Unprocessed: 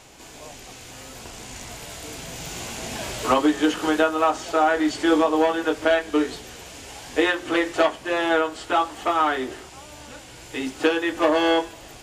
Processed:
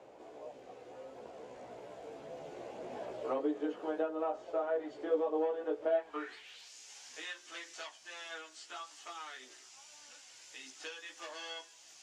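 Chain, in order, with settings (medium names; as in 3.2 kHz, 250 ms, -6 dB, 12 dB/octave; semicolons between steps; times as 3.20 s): chorus voices 2, 0.84 Hz, delay 15 ms, depth 1.4 ms; band-pass sweep 520 Hz -> 5.9 kHz, 5.91–6.73 s; three bands compressed up and down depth 40%; trim -4 dB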